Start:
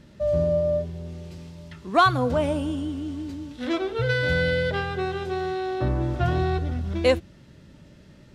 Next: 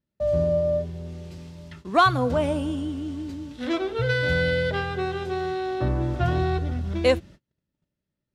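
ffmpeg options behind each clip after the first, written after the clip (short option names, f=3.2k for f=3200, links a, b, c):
-af "agate=range=-34dB:threshold=-43dB:ratio=16:detection=peak"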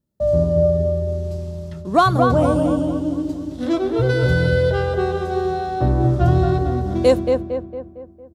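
-filter_complex "[0:a]equalizer=f=2.3k:t=o:w=1.7:g=-12.5,asplit=2[a][b];[b]adelay=228,lowpass=f=2k:p=1,volume=-4dB,asplit=2[c][d];[d]adelay=228,lowpass=f=2k:p=1,volume=0.51,asplit=2[e][f];[f]adelay=228,lowpass=f=2k:p=1,volume=0.51,asplit=2[g][h];[h]adelay=228,lowpass=f=2k:p=1,volume=0.51,asplit=2[i][j];[j]adelay=228,lowpass=f=2k:p=1,volume=0.51,asplit=2[k][l];[l]adelay=228,lowpass=f=2k:p=1,volume=0.51,asplit=2[m][n];[n]adelay=228,lowpass=f=2k:p=1,volume=0.51[o];[c][e][g][i][k][m][o]amix=inputs=7:normalize=0[p];[a][p]amix=inputs=2:normalize=0,volume=7dB"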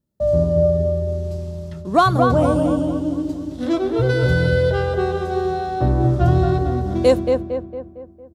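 -af anull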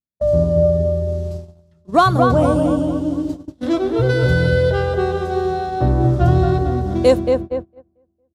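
-af "agate=range=-24dB:threshold=-25dB:ratio=16:detection=peak,volume=1.5dB"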